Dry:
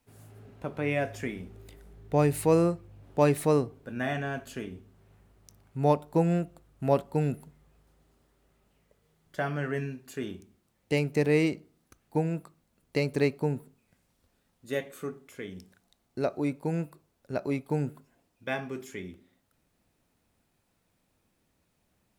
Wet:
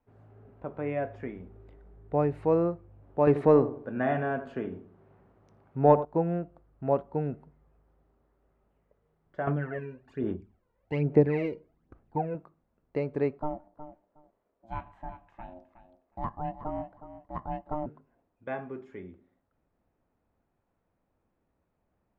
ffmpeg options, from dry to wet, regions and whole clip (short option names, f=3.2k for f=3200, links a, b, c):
-filter_complex "[0:a]asettb=1/sr,asplit=3[a][b][c];[a]atrim=end=3.274[d];[b]atrim=start=3.27:end=6.05,asetpts=PTS-STARTPTS,afade=t=in:d=0.004:c=qsin,afade=t=out:st=2.776:d=0.004:c=qsin,highpass=110,acontrast=65,asplit=2[e][f];[f]adelay=83,lowpass=f=1.3k:p=1,volume=-12dB,asplit=2[g][h];[h]adelay=83,lowpass=f=1.3k:p=1,volume=0.39,asplit=2[i][j];[j]adelay=83,lowpass=f=1.3k:p=1,volume=0.39,asplit=2[k][l];[l]adelay=83,lowpass=f=1.3k:p=1,volume=0.39[m];[e][g][i][k][m]amix=inputs=5:normalize=0,atrim=end_sample=122598[n];[c]atrim=start=6.046[o];[d][n]acrossfade=d=0.004:c1=hsin:c2=qsin[p];[p][o]acrossfade=d=0.004:c1=qsin:c2=hsin,asettb=1/sr,asplit=3[q][r][s];[q]atrim=end=9.474[t];[r]atrim=start=9.47:end=12.35,asetpts=PTS-STARTPTS,afade=t=in:d=0.004:c=qsin,afade=t=out:st=2.876:d=0.004:c=qsin,bandreject=f=1.2k:w=28,aphaser=in_gain=1:out_gain=1:delay=2.1:decay=0.7:speed=1.2:type=sinusoidal[u];[s]atrim=start=12.346[v];[t][u]acrossfade=d=0.004:c1=hsin:c2=qsin[w];[w][v]acrossfade=d=0.004:c1=qsin:c2=hsin,asettb=1/sr,asplit=3[x][y][z];[x]atrim=end=13.394[aa];[y]atrim=start=13.39:end=17.86,asetpts=PTS-STARTPTS,afade=t=in:d=0.004:c=qsin,afade=t=out:st=4.466:d=0.004:c=qsin,aeval=exprs='val(0)*sin(2*PI*450*n/s)':c=same,aecho=1:1:365|730:0.237|0.0403,atrim=end_sample=197127[ab];[z]atrim=start=17.856[ac];[aa][ab]acrossfade=d=0.004:c1=hsin:c2=qsin[ad];[ad][ac]acrossfade=d=0.004:c1=qsin:c2=hsin,lowpass=1.2k,equalizer=f=160:t=o:w=2:g=-5"